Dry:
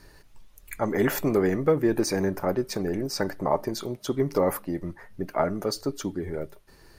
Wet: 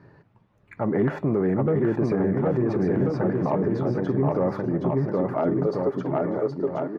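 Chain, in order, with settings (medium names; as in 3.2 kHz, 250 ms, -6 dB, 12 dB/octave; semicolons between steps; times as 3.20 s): low-pass 1.4 kHz 12 dB/octave; saturation -11.5 dBFS, distortion -24 dB; high-pass sweep 130 Hz -> 780 Hz, 4.70–6.44 s; on a send: bouncing-ball echo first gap 770 ms, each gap 0.8×, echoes 5; on the sum: peak limiter -16.5 dBFS, peak gain reduction 7.5 dB; trim +2.5 dB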